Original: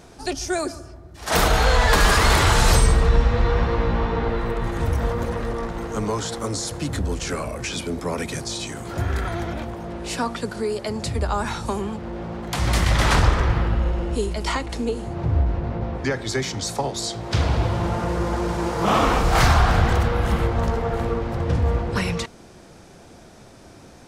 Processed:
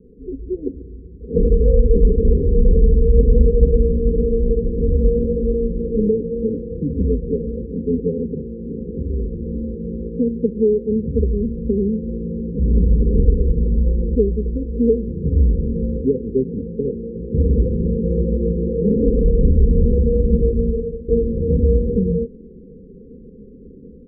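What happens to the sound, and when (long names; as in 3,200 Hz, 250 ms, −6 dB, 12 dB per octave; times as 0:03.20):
0:02.71–0:03.34: delay throw 440 ms, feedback 55%, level −0.5 dB
0:08.10–0:10.15: downward compressor 2 to 1, threshold −26 dBFS
0:20.52–0:21.08: fade out, to −21.5 dB
whole clip: Chebyshev low-pass filter 520 Hz, order 10; comb filter 4.5 ms, depth 76%; automatic gain control gain up to 6 dB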